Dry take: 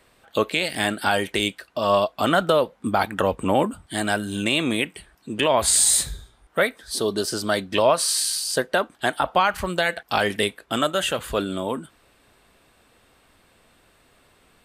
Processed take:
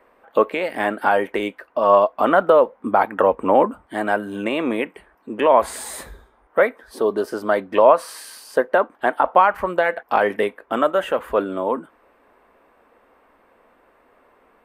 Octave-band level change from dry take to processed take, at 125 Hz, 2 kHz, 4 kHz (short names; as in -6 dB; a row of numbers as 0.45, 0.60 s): n/a, 0.0 dB, -12.0 dB